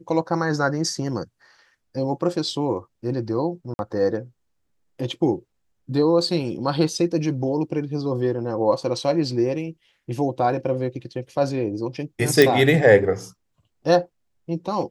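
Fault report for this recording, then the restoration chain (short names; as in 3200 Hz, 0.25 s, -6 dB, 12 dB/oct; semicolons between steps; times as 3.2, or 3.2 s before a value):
3.74–3.79 gap 51 ms
12.42 pop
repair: de-click; interpolate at 3.74, 51 ms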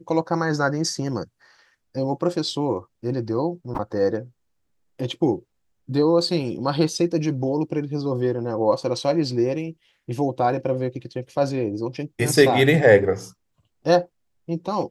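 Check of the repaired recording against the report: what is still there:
none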